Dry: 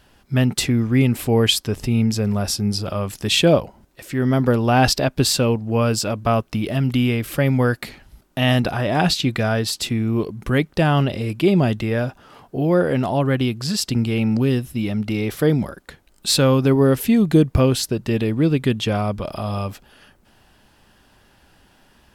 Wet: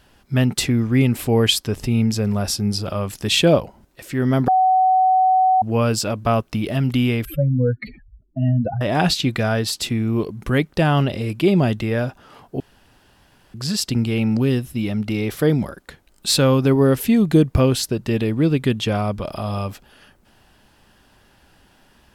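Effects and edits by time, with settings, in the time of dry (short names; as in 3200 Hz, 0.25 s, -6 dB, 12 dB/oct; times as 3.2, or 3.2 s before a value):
4.48–5.62 bleep 750 Hz -12 dBFS
7.25–8.81 spectral contrast raised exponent 3.4
12.6–13.54 room tone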